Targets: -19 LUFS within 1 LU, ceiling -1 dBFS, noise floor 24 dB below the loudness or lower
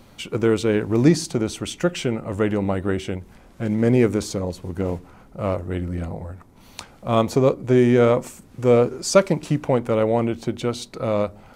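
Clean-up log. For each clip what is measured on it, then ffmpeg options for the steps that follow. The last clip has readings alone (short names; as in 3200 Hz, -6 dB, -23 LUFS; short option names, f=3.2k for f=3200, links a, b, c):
loudness -21.5 LUFS; peak -2.5 dBFS; loudness target -19.0 LUFS
-> -af "volume=2.5dB,alimiter=limit=-1dB:level=0:latency=1"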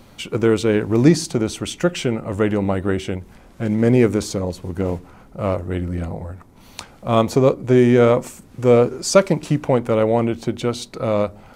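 loudness -19.0 LUFS; peak -1.0 dBFS; noise floor -47 dBFS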